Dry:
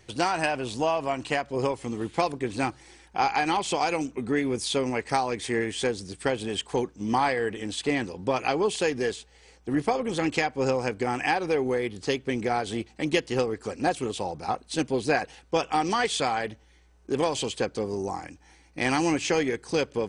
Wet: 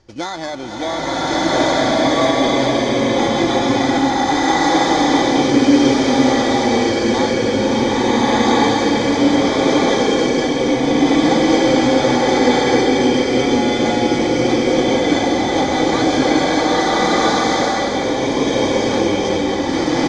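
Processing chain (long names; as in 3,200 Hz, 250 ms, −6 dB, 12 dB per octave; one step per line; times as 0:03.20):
samples in bit-reversed order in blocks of 16 samples
comb filter 3.5 ms, depth 39%
in parallel at 0 dB: brickwall limiter −16.5 dBFS, peak gain reduction 9 dB
on the sum: Butterworth low-pass 7,000 Hz 48 dB per octave
slow-attack reverb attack 1,430 ms, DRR −11.5 dB
level −4 dB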